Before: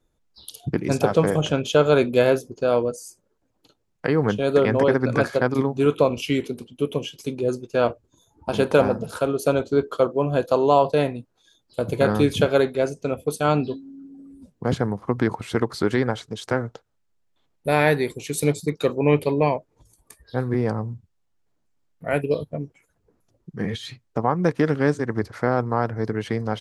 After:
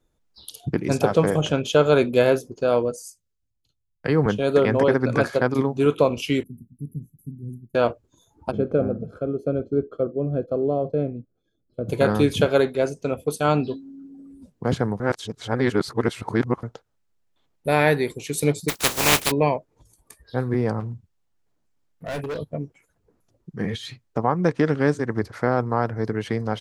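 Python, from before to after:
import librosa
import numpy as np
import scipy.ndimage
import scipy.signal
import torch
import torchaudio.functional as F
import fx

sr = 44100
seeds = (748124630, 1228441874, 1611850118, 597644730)

y = fx.band_widen(x, sr, depth_pct=70, at=(3.02, 4.26))
y = fx.cheby2_bandstop(y, sr, low_hz=770.0, high_hz=4400.0, order=4, stop_db=70, at=(6.43, 7.75))
y = fx.moving_average(y, sr, points=47, at=(8.5, 11.88), fade=0.02)
y = fx.spec_flatten(y, sr, power=0.18, at=(18.68, 19.3), fade=0.02)
y = fx.clip_hard(y, sr, threshold_db=-26.5, at=(20.8, 22.39))
y = fx.lowpass(y, sr, hz=8900.0, slope=24, at=(24.34, 24.78))
y = fx.edit(y, sr, fx.reverse_span(start_s=15.0, length_s=1.63), tone=tone)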